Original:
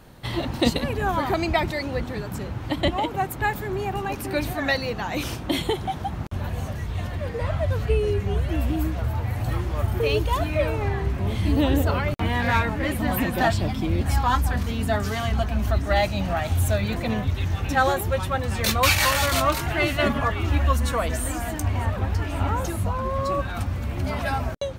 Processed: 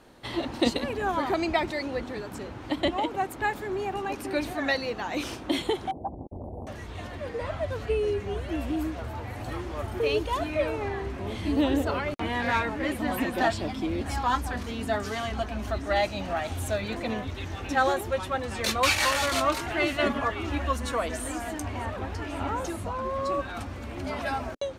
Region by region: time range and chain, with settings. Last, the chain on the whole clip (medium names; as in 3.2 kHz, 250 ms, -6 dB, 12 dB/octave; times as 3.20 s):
5.91–6.67 s: brick-wall FIR band-stop 850–10000 Hz + distance through air 85 m + loudspeaker Doppler distortion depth 0.62 ms
whole clip: low-pass 9.9 kHz 12 dB/octave; resonant low shelf 210 Hz -7.5 dB, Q 1.5; trim -3.5 dB